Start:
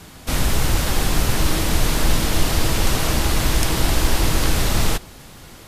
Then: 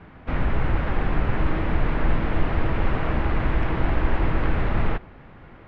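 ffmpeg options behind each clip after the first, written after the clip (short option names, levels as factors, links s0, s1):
-af "lowpass=f=2200:w=0.5412,lowpass=f=2200:w=1.3066,volume=0.708"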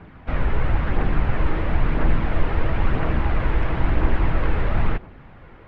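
-af "aphaser=in_gain=1:out_gain=1:delay=2.4:decay=0.29:speed=0.99:type=triangular"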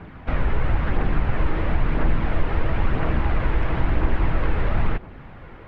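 -af "acompressor=threshold=0.0501:ratio=1.5,volume=1.5"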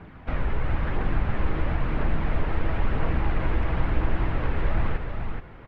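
-af "aecho=1:1:425:0.531,volume=0.596"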